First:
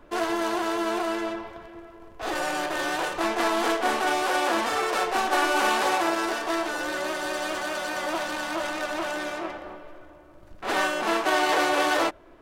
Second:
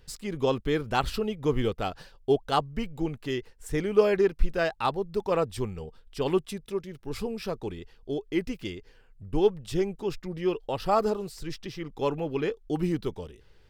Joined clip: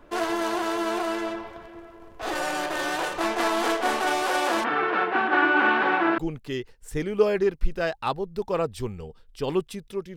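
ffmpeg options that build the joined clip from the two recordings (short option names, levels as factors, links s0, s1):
-filter_complex "[0:a]asplit=3[s0][s1][s2];[s0]afade=t=out:st=4.63:d=0.02[s3];[s1]highpass=f=130:w=0.5412,highpass=f=130:w=1.3066,equalizer=f=140:t=q:w=4:g=8,equalizer=f=200:t=q:w=4:g=6,equalizer=f=310:t=q:w=4:g=7,equalizer=f=580:t=q:w=4:g=-5,equalizer=f=1500:t=q:w=4:g=7,lowpass=f=2900:w=0.5412,lowpass=f=2900:w=1.3066,afade=t=in:st=4.63:d=0.02,afade=t=out:st=6.18:d=0.02[s4];[s2]afade=t=in:st=6.18:d=0.02[s5];[s3][s4][s5]amix=inputs=3:normalize=0,apad=whole_dur=10.16,atrim=end=10.16,atrim=end=6.182[s6];[1:a]atrim=start=2.958:end=6.94[s7];[s6][s7]acrossfade=d=0.004:c1=hsin:c2=hsin"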